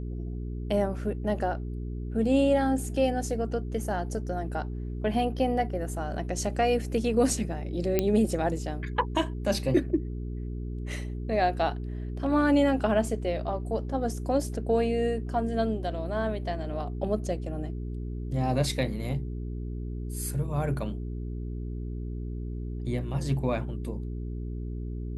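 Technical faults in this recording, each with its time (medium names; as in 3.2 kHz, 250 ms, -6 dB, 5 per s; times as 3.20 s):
hum 60 Hz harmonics 7 -34 dBFS
7.99 s: pop -10 dBFS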